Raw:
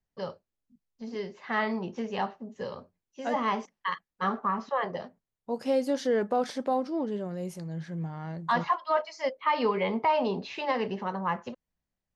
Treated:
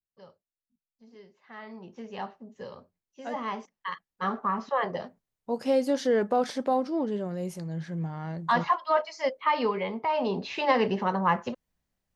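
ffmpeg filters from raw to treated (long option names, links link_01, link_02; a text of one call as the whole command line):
ffmpeg -i in.wav -af "volume=13dB,afade=type=in:start_time=1.61:duration=0.67:silence=0.281838,afade=type=in:start_time=3.73:duration=1.07:silence=0.446684,afade=type=out:start_time=9.41:duration=0.58:silence=0.421697,afade=type=in:start_time=9.99:duration=0.73:silence=0.281838" out.wav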